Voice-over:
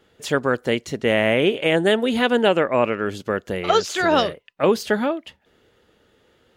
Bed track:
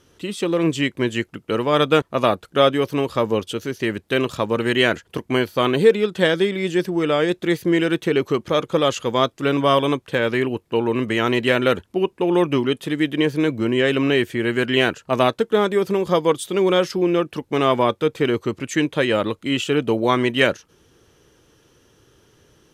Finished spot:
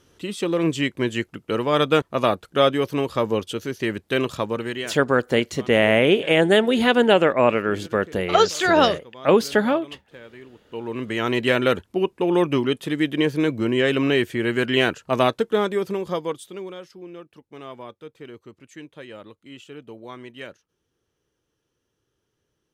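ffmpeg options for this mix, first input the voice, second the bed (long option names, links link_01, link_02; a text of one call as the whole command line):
ffmpeg -i stem1.wav -i stem2.wav -filter_complex "[0:a]adelay=4650,volume=1.5dB[link_01];[1:a]volume=19.5dB,afade=type=out:start_time=4.35:duration=0.6:silence=0.0891251,afade=type=in:start_time=10.57:duration=0.9:silence=0.0841395,afade=type=out:start_time=15.32:duration=1.43:silence=0.112202[link_02];[link_01][link_02]amix=inputs=2:normalize=0" out.wav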